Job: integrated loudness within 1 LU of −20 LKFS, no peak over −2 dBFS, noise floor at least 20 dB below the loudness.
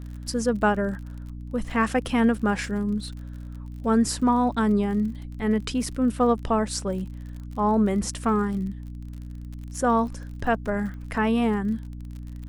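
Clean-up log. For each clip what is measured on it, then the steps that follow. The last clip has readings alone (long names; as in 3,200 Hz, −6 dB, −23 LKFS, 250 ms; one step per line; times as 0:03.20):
crackle rate 44 per second; mains hum 60 Hz; hum harmonics up to 300 Hz; level of the hum −34 dBFS; integrated loudness −25.0 LKFS; sample peak −10.0 dBFS; target loudness −20.0 LKFS
→ click removal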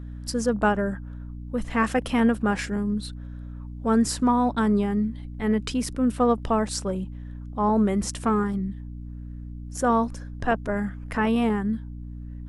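crackle rate 0.080 per second; mains hum 60 Hz; hum harmonics up to 300 Hz; level of the hum −34 dBFS
→ mains-hum notches 60/120/180/240/300 Hz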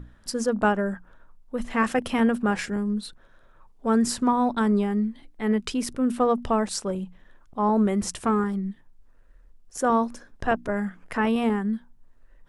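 mains hum none found; integrated loudness −25.5 LKFS; sample peak −10.0 dBFS; target loudness −20.0 LKFS
→ level +5.5 dB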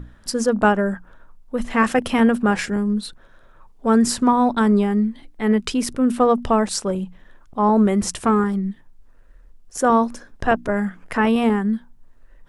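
integrated loudness −20.0 LKFS; sample peak −4.5 dBFS; background noise floor −49 dBFS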